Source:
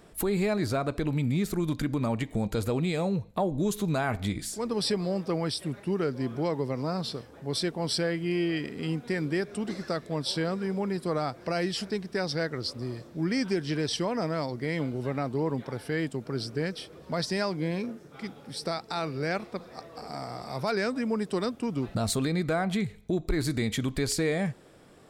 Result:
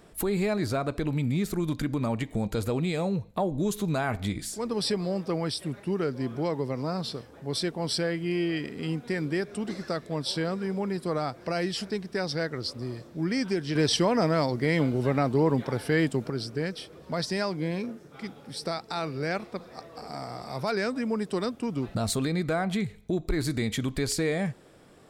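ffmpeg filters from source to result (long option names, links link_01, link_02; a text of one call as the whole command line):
ffmpeg -i in.wav -filter_complex "[0:a]asettb=1/sr,asplit=3[link_01][link_02][link_03];[link_01]atrim=end=13.754[link_04];[link_02]atrim=start=13.75:end=16.3,asetpts=PTS-STARTPTS,afade=type=in:duration=0.004:curve=qsin,afade=type=out:start_time=2.546:duration=0.004:curve=qsin,acontrast=44[link_05];[link_03]atrim=start=16.296[link_06];[link_04][link_05]acrossfade=duration=0.004:curve1=hsin:curve2=qsin[link_07];[link_07][link_06]acrossfade=duration=0.004:curve1=qsin:curve2=hsin" out.wav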